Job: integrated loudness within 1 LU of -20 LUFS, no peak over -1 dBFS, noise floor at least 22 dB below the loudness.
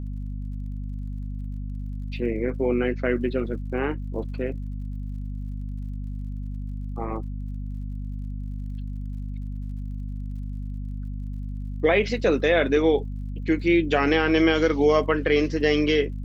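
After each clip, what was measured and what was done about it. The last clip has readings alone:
ticks 56/s; hum 50 Hz; harmonics up to 250 Hz; hum level -29 dBFS; loudness -26.0 LUFS; peak -7.5 dBFS; loudness target -20.0 LUFS
-> de-click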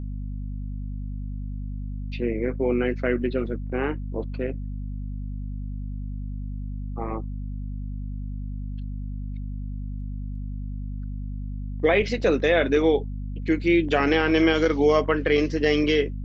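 ticks 0.12/s; hum 50 Hz; harmonics up to 250 Hz; hum level -29 dBFS
-> de-hum 50 Hz, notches 5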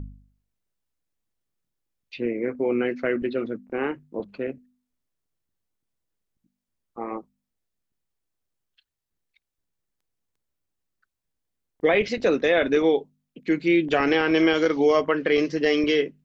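hum none; loudness -23.0 LUFS; peak -8.0 dBFS; loudness target -20.0 LUFS
-> gain +3 dB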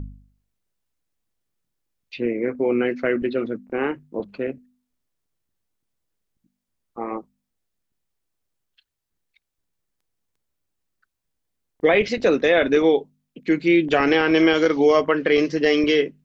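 loudness -20.0 LUFS; peak -5.0 dBFS; noise floor -80 dBFS

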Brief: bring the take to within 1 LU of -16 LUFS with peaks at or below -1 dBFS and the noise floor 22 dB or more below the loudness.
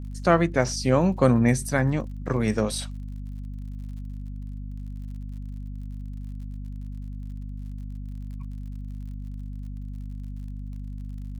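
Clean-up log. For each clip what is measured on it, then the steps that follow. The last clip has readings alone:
ticks 57/s; hum 50 Hz; harmonics up to 250 Hz; hum level -32 dBFS; loudness -28.5 LUFS; peak -5.0 dBFS; loudness target -16.0 LUFS
-> de-click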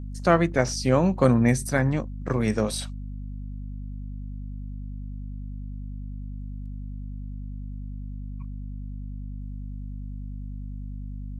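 ticks 0.088/s; hum 50 Hz; harmonics up to 250 Hz; hum level -32 dBFS
-> de-hum 50 Hz, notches 5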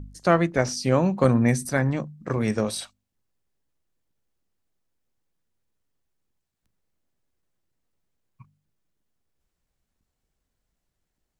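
hum none; loudness -23.5 LUFS; peak -5.0 dBFS; loudness target -16.0 LUFS
-> gain +7.5 dB; limiter -1 dBFS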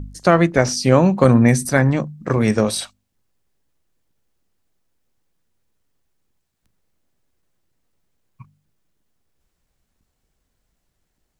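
loudness -16.5 LUFS; peak -1.0 dBFS; noise floor -73 dBFS

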